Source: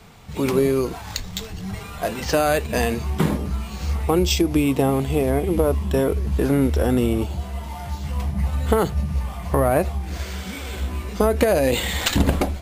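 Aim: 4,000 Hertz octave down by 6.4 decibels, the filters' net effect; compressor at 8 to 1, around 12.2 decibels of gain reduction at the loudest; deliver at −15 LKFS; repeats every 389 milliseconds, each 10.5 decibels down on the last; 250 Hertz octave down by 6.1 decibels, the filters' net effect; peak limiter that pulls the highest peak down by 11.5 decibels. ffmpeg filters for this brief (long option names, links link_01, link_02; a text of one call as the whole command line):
ffmpeg -i in.wav -af "equalizer=frequency=250:width_type=o:gain=-8,equalizer=frequency=4000:width_type=o:gain=-8.5,acompressor=threshold=-28dB:ratio=8,alimiter=level_in=1dB:limit=-24dB:level=0:latency=1,volume=-1dB,aecho=1:1:389|778|1167:0.299|0.0896|0.0269,volume=19dB" out.wav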